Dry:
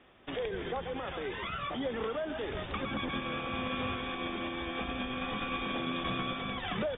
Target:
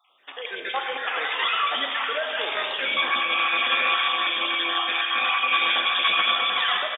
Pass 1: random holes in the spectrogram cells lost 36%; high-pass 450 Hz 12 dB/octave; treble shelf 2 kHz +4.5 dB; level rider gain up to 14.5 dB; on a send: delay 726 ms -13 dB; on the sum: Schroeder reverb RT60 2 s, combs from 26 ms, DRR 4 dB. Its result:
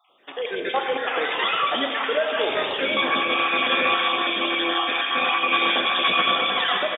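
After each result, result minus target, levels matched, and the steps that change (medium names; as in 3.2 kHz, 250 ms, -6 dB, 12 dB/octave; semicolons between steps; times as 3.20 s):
echo 240 ms late; 500 Hz band +7.5 dB
change: delay 486 ms -13 dB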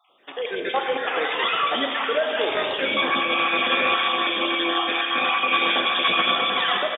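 500 Hz band +7.5 dB
change: high-pass 950 Hz 12 dB/octave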